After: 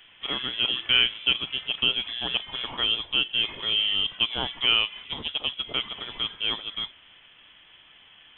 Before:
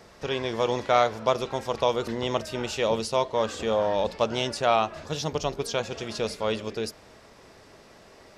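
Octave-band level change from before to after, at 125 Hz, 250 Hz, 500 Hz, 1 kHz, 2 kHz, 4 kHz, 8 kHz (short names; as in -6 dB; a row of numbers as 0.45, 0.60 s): -10.0 dB, -9.0 dB, -18.0 dB, -11.5 dB, +5.5 dB, +13.0 dB, under -40 dB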